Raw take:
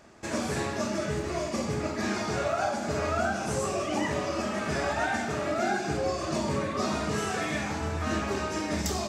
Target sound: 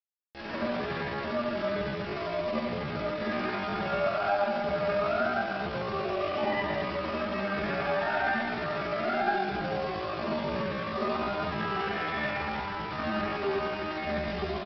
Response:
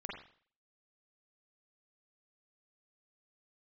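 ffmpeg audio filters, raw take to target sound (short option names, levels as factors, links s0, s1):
-filter_complex "[0:a]bass=f=250:g=0,treble=f=4000:g=-5,bandreject=f=50:t=h:w=6,bandreject=f=100:t=h:w=6,bandreject=f=150:t=h:w=6,bandreject=f=200:t=h:w=6,bandreject=f=250:t=h:w=6,bandreject=f=300:t=h:w=6,bandreject=f=350:t=h:w=6,asplit=2[s0][s1];[s1]aecho=0:1:76|152|228|304|380:0.299|0.131|0.0578|0.0254|0.0112[s2];[s0][s2]amix=inputs=2:normalize=0,acrossover=split=4200[s3][s4];[s4]acompressor=threshold=0.00316:ratio=4:attack=1:release=60[s5];[s3][s5]amix=inputs=2:normalize=0,aresample=11025,acrusher=bits=5:mix=0:aa=0.5,aresample=44100[s6];[1:a]atrim=start_sample=2205[s7];[s6][s7]afir=irnorm=-1:irlink=0,atempo=0.62,equalizer=f=150:w=0.31:g=-4.5,volume=1.19"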